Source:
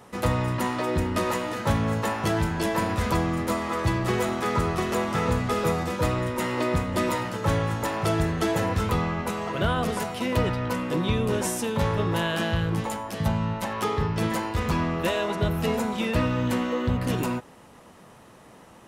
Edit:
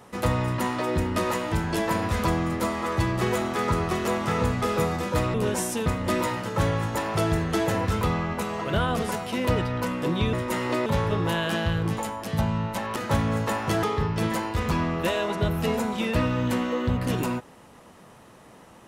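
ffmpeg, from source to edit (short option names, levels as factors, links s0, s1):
-filter_complex "[0:a]asplit=8[s0][s1][s2][s3][s4][s5][s6][s7];[s0]atrim=end=1.522[s8];[s1]atrim=start=2.388:end=6.212[s9];[s2]atrim=start=11.208:end=11.732[s10];[s3]atrim=start=6.738:end=11.212[s11];[s4]atrim=start=6.208:end=6.742[s12];[s5]atrim=start=11.728:end=13.832[s13];[s6]atrim=start=1.518:end=2.392[s14];[s7]atrim=start=13.828[s15];[s8][s9]acrossfade=d=0.004:c1=hsin:c2=hsin[s16];[s16][s10]acrossfade=d=0.004:c1=hsin:c2=hsin[s17];[s17][s11]acrossfade=d=0.004:c1=hsin:c2=hsin[s18];[s18][s12]acrossfade=d=0.004:c1=hsin:c2=hsin[s19];[s19][s13]acrossfade=d=0.004:c1=hsin:c2=hsin[s20];[s20][s14]acrossfade=d=0.004:c1=hsin:c2=hsin[s21];[s21][s15]acrossfade=d=0.004:c1=hsin:c2=hsin"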